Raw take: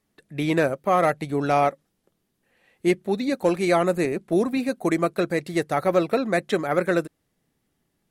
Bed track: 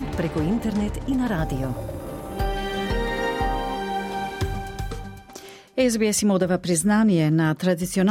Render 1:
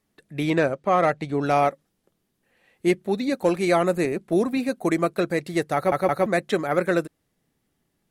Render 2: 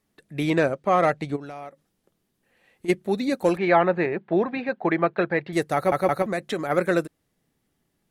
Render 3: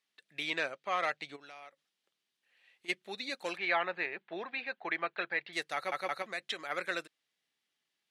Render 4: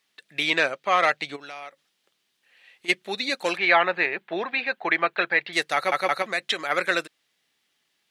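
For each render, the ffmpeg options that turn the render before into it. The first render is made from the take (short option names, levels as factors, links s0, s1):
-filter_complex "[0:a]asettb=1/sr,asplit=3[s0][s1][s2];[s0]atrim=end=0.504[s3];[s1]atrim=start=0.5:end=1.43,asetpts=PTS-STARTPTS,afade=t=in:d=0.004:c=qsin,afade=t=out:st=0.926:d=0.004:c=qsin,lowpass=6700[s4];[s2]atrim=start=1.426[s5];[s3][s4]acrossfade=d=0.004:c1=hsin:c2=qsin[s6];[s6][s5]acrossfade=d=0.004:c1=qsin:c2=hsin,asplit=4[s7][s8][s9][s10];[s7]atrim=end=5.922[s11];[s8]atrim=start=5.748:end=5.922[s12];[s9]atrim=start=5.748:end=5.922[s13];[s10]atrim=start=6.258[s14];[s11][s12]acrossfade=d=0.004:c1=hsin:c2=hsin[s15];[s15][s13]acrossfade=d=0.004:c1=hsin:c2=hsin[s16];[s16][s14]acrossfade=d=0.004:c1=hsin:c2=hsin"
-filter_complex "[0:a]asplit=3[s0][s1][s2];[s0]afade=t=out:st=1.35:d=0.02[s3];[s1]acompressor=threshold=0.0178:ratio=6:attack=3.2:release=140:knee=1:detection=peak,afade=t=in:st=1.35:d=0.02,afade=t=out:st=2.88:d=0.02[s4];[s2]afade=t=in:st=2.88:d=0.02[s5];[s3][s4][s5]amix=inputs=3:normalize=0,asettb=1/sr,asplit=3[s6][s7][s8];[s6]atrim=end=3.574[s9];[s7]atrim=start=3.57:end=5.53,asetpts=PTS-STARTPTS,afade=t=in:d=0.004:c=qsin,afade=t=out:st=1.956:d=0.004:c=qsin,highpass=100,equalizer=f=260:t=q:w=4:g=-7,equalizer=f=860:t=q:w=4:g=8,equalizer=f=1700:t=q:w=4:g=7,lowpass=f=3400:w=0.5412,lowpass=f=3400:w=1.3066[s10];[s8]atrim=start=5.526[s11];[s9][s10]acrossfade=d=0.004:c1=hsin:c2=qsin[s12];[s12][s11]acrossfade=d=0.004:c1=qsin:c2=hsin,asettb=1/sr,asplit=3[s13][s14][s15];[s13]atrim=end=6.224[s16];[s14]atrim=start=6.22:end=6.7,asetpts=PTS-STARTPTS,afade=t=in:d=0.004:c=qsin,afade=t=out:st=0.476:d=0.004:c=qsin,acompressor=threshold=0.0631:ratio=2.5:attack=3.2:release=140:knee=1:detection=peak[s17];[s15]atrim=start=6.696[s18];[s16][s17]acrossfade=d=0.004:c1=hsin:c2=qsin[s19];[s19][s18]acrossfade=d=0.004:c1=qsin:c2=hsin"
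-af "bandpass=f=3300:t=q:w=1.2:csg=0"
-af "volume=3.98"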